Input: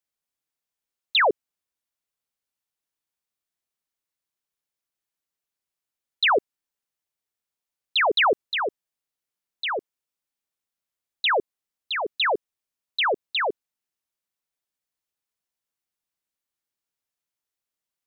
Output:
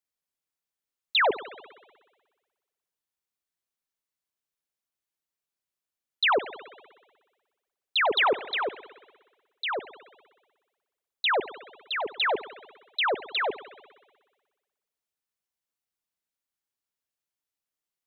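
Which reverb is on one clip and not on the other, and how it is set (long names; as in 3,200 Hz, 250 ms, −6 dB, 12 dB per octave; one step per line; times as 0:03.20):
spring reverb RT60 1.4 s, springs 59 ms, chirp 60 ms, DRR 14 dB
level −3 dB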